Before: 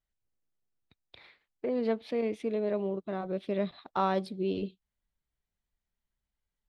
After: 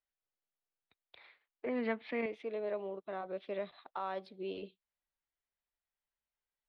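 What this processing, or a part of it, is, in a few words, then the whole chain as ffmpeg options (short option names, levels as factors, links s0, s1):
DJ mixer with the lows and highs turned down: -filter_complex "[0:a]acrossover=split=430 4200:gain=0.178 1 0.0708[s0][s1][s2];[s0][s1][s2]amix=inputs=3:normalize=0,alimiter=level_in=1.19:limit=0.0631:level=0:latency=1:release=317,volume=0.841,asettb=1/sr,asplit=3[s3][s4][s5];[s3]atrim=end=1.664[s6];[s4]atrim=start=1.66:end=2.26,asetpts=PTS-STARTPTS,afade=t=in:d=0.004:c=qsin,afade=t=out:st=0.596:d=0.004:c=qsin,equalizer=f=125:t=o:w=1:g=10,equalizer=f=250:t=o:w=1:g=9,equalizer=f=500:t=o:w=1:g=-4,equalizer=f=1000:t=o:w=1:g=3,equalizer=f=2000:t=o:w=1:g=11,equalizer=f=8000:t=o:w=1:g=-8[s7];[s5]atrim=start=2.256[s8];[s6][s7]acrossfade=d=0.004:c1=hsin:c2=qsin[s9];[s9][s8]acrossfade=d=0.004:c1=qsin:c2=hsin,volume=0.75"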